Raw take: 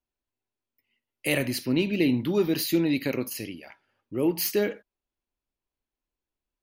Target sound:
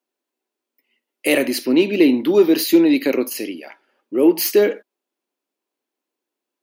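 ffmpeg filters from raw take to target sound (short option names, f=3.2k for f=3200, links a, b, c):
-af "acontrast=79,highpass=f=300:w=0.5412,highpass=f=300:w=1.3066,lowshelf=f=380:g=11"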